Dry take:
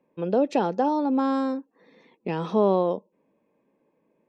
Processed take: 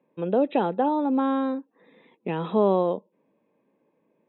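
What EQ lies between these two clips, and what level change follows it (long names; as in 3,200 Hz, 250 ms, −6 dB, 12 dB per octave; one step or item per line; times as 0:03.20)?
high-pass filter 76 Hz
linear-phase brick-wall low-pass 4,000 Hz
0.0 dB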